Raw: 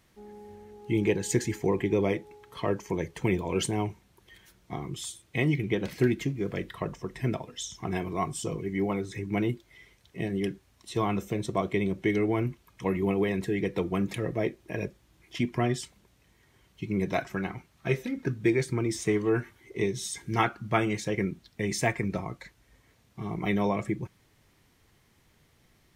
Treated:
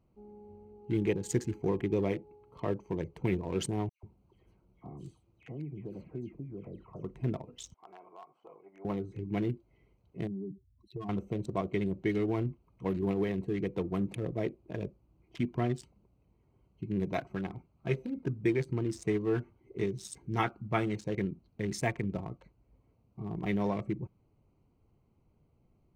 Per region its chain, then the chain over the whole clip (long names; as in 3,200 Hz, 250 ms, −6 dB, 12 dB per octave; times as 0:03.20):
0:03.89–0:07.03: downward compressor 2 to 1, threshold −41 dBFS + all-pass dispersion lows, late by 141 ms, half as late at 2,200 Hz
0:07.74–0:08.85: gain on one half-wave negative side −3 dB + flat-topped band-pass 1,200 Hz, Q 0.84 + downward compressor 3 to 1, threshold −39 dBFS
0:10.27–0:11.09: expanding power law on the bin magnitudes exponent 2.7 + downward compressor, threshold −31 dBFS
whole clip: adaptive Wiener filter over 25 samples; low-shelf EQ 350 Hz +3 dB; level −5.5 dB